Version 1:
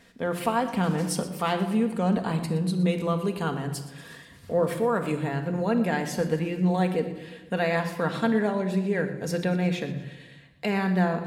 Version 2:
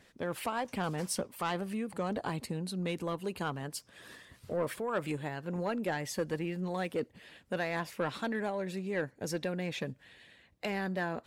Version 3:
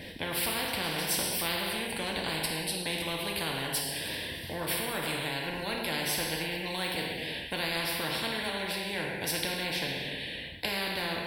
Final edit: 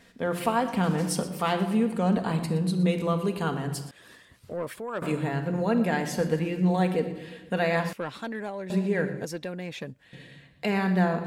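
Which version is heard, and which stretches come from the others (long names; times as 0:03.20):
1
0:03.91–0:05.02: punch in from 2
0:07.93–0:08.70: punch in from 2
0:09.25–0:10.13: punch in from 2
not used: 3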